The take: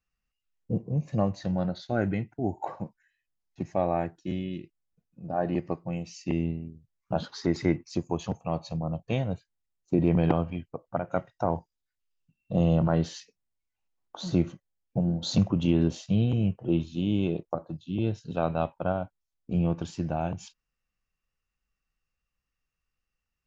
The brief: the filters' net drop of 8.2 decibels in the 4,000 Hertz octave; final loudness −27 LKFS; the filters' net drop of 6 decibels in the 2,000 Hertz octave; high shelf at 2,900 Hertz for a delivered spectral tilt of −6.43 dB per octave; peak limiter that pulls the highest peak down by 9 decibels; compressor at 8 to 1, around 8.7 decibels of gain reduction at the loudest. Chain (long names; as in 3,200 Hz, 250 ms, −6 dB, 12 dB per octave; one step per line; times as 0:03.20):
parametric band 2,000 Hz −5 dB
high-shelf EQ 2,900 Hz −6.5 dB
parametric band 4,000 Hz −3.5 dB
downward compressor 8 to 1, threshold −27 dBFS
level +9.5 dB
brickwall limiter −14 dBFS